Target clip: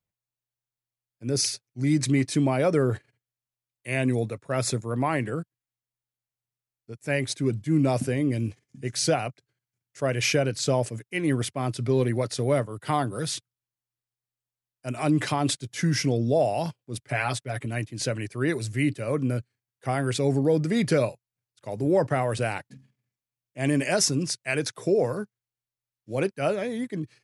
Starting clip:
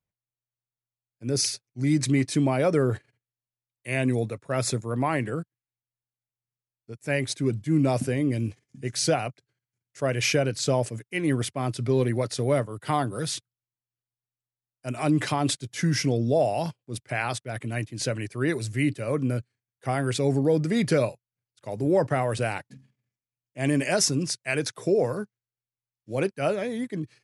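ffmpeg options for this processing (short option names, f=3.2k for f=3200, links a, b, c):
-filter_complex "[0:a]asettb=1/sr,asplit=3[a][b][c];[a]atrim=end=17.034[d];[b]atrim=start=17.03:end=17.66,asetpts=PTS-STARTPTS,afade=t=in:d=0.004:c=qsin,afade=t=out:st=0.626:d=0.004:c=qsin,aecho=1:1:7.1:0.57,atrim=end_sample=27783[e];[c]atrim=start=17.656[f];[d][e]acrossfade=d=0.004:c1=hsin:c2=qsin[g];[g][f]acrossfade=d=0.004:c1=qsin:c2=hsin"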